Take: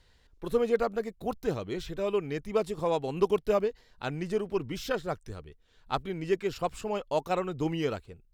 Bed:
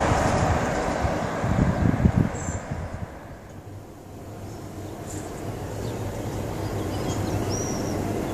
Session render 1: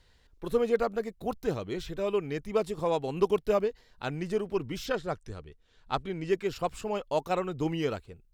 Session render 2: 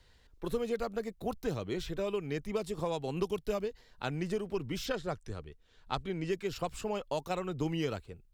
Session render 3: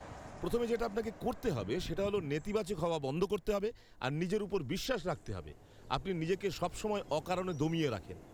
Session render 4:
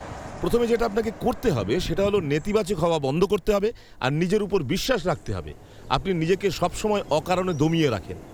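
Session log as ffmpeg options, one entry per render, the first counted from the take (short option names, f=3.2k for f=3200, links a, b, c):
-filter_complex "[0:a]asplit=3[a][b][c];[a]afade=t=out:st=4.85:d=0.02[d];[b]lowpass=9.3k,afade=t=in:st=4.85:d=0.02,afade=t=out:st=6.28:d=0.02[e];[c]afade=t=in:st=6.28:d=0.02[f];[d][e][f]amix=inputs=3:normalize=0"
-filter_complex "[0:a]acrossover=split=170|3000[a][b][c];[b]acompressor=threshold=-31dB:ratio=6[d];[a][d][c]amix=inputs=3:normalize=0"
-filter_complex "[1:a]volume=-27dB[a];[0:a][a]amix=inputs=2:normalize=0"
-af "volume=12dB"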